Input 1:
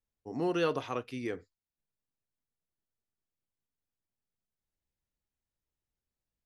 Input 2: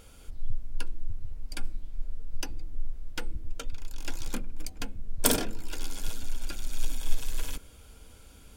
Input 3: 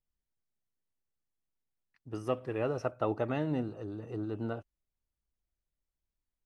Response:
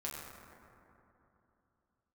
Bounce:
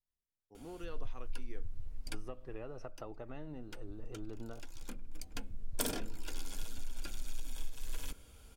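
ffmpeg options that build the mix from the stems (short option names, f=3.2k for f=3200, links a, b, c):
-filter_complex "[0:a]adelay=250,volume=-16dB[a];[1:a]acompressor=threshold=-24dB:ratio=6,adelay=550,volume=-5.5dB[b];[2:a]tremolo=f=0.7:d=0.37,volume=-7dB,asplit=2[c][d];[d]apad=whole_len=401971[e];[b][e]sidechaincompress=threshold=-47dB:ratio=8:attack=38:release=1320[f];[a][c]amix=inputs=2:normalize=0,acompressor=threshold=-42dB:ratio=10,volume=0dB[g];[f][g]amix=inputs=2:normalize=0"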